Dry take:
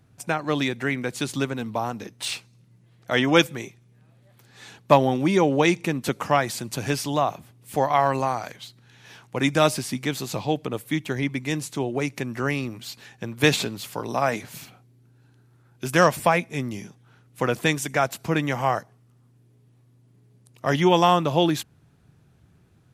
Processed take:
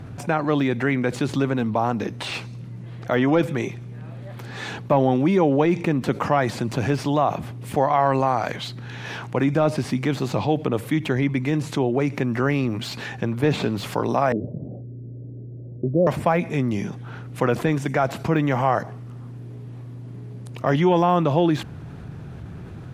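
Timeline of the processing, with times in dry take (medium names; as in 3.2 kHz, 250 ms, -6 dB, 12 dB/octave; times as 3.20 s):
14.32–16.07 s: Chebyshev low-pass 600 Hz, order 5
whole clip: de-esser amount 85%; low-pass 1.8 kHz 6 dB/octave; level flattener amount 50%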